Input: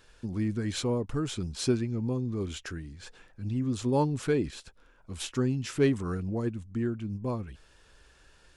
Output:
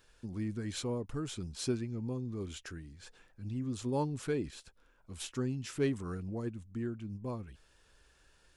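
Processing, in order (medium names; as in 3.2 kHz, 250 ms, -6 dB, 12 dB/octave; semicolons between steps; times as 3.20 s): treble shelf 8.9 kHz +6 dB; trim -7 dB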